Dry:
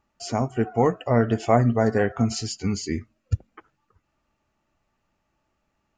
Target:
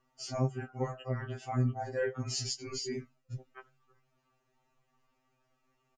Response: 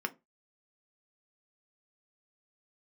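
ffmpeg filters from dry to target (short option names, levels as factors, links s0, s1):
-filter_complex "[0:a]areverse,acompressor=threshold=0.0398:ratio=6,areverse,asplit=2[s0][s1];[s1]adelay=13,volume=0.299[s2];[s0][s2]amix=inputs=2:normalize=0,afftfilt=real='re*2.45*eq(mod(b,6),0)':imag='im*2.45*eq(mod(b,6),0)':win_size=2048:overlap=0.75"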